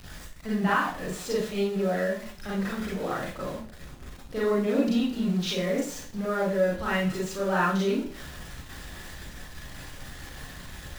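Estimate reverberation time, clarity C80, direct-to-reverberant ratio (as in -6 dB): 0.50 s, 7.5 dB, -7.5 dB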